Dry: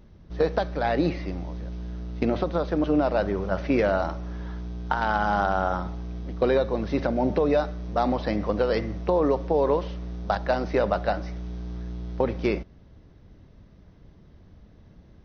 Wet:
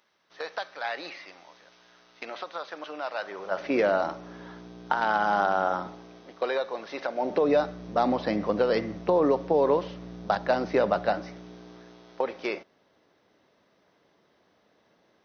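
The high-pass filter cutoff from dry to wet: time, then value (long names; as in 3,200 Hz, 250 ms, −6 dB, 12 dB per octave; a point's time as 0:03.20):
0:03.19 1,100 Hz
0:03.82 260 Hz
0:05.86 260 Hz
0:06.46 680 Hz
0:07.12 680 Hz
0:07.58 160 Hz
0:11.07 160 Hz
0:12.05 530 Hz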